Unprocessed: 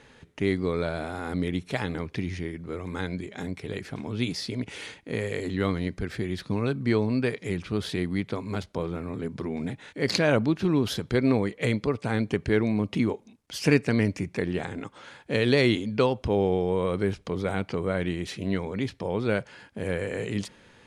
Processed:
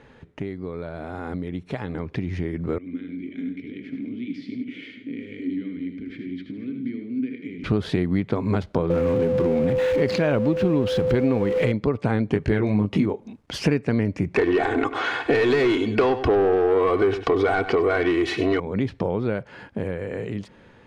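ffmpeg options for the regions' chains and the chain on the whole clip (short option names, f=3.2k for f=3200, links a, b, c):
-filter_complex "[0:a]asettb=1/sr,asplit=3[a][b][c];[a]atrim=end=2.784[d];[b]atrim=start=2.78:end=7.64,asetpts=PTS-STARTPTS,afade=t=in:d=0.004:c=qsin,afade=t=out:st=4.856:d=0.004:c=qsin,acompressor=threshold=-32dB:ratio=10:attack=3.2:release=140:knee=1:detection=peak,asplit=3[e][f][g];[e]bandpass=f=270:t=q:w=8,volume=0dB[h];[f]bandpass=f=2.29k:t=q:w=8,volume=-6dB[i];[g]bandpass=f=3.01k:t=q:w=8,volume=-9dB[j];[h][i][j]amix=inputs=3:normalize=0,aecho=1:1:78|99|164|485:0.422|0.282|0.15|0.237,atrim=end_sample=214326[k];[c]atrim=start=7.636[l];[d][k]acrossfade=d=0.004:c1=hsin:c2=qsin[m];[m][l]acrossfade=d=0.004:c1=qsin:c2=hsin,asettb=1/sr,asplit=3[n][o][p];[n]atrim=end=8.904[q];[o]atrim=start=8.9:end=11.72,asetpts=PTS-STARTPTS,afade=t=in:d=0.004:c=qsin,afade=t=out:st=2.816:d=0.004:c=qsin,aeval=exprs='val(0)+0.5*0.0237*sgn(val(0))':c=same,equalizer=f=2.7k:t=o:w=0.55:g=3.5,aeval=exprs='val(0)+0.0562*sin(2*PI*510*n/s)':c=same[r];[p]atrim=start=11.716[s];[q][r]acrossfade=d=0.004:c1=hsin:c2=qsin[t];[t][s]acrossfade=d=0.004:c1=qsin:c2=hsin,asettb=1/sr,asplit=3[u][v][w];[u]atrim=end=12.334[x];[v]atrim=start=12.33:end=13.06,asetpts=PTS-STARTPTS,afade=t=in:d=0.004:c=qsin,afade=t=out:st=0.726:d=0.004:c=qsin,highshelf=f=5.5k:g=7,asplit=2[y][z];[z]adelay=20,volume=-4dB[aa];[y][aa]amix=inputs=2:normalize=0,atrim=end_sample=32193[ab];[w]atrim=start=13.056[ac];[x][ab]acrossfade=d=0.004:c1=hsin:c2=qsin[ad];[ad][ac]acrossfade=d=0.004:c1=qsin:c2=hsin,asettb=1/sr,asplit=3[ae][af][ag];[ae]atrim=end=14.364[ah];[af]atrim=start=14.36:end=18.6,asetpts=PTS-STARTPTS,afade=t=in:d=0.004:c=qsin,afade=t=out:st=4.236:d=0.004:c=qsin,aecho=1:1:2.7:0.77,atrim=end_sample=186984,asplit=2[ai][aj];[aj]highpass=f=720:p=1,volume=22dB,asoftclip=type=tanh:threshold=-8dB[ak];[ai][ak]amix=inputs=2:normalize=0,lowpass=f=4.3k:p=1,volume=-6dB,aecho=1:1:97:0.188,atrim=end_sample=186984[al];[ag]atrim=start=18.596[am];[ah][al]acrossfade=d=0.004:c1=hsin:c2=qsin[an];[an][am]acrossfade=d=0.004:c1=qsin:c2=hsin,acompressor=threshold=-33dB:ratio=6,lowpass=f=1.3k:p=1,dynaudnorm=f=1000:g=5:m=10dB,volume=5dB"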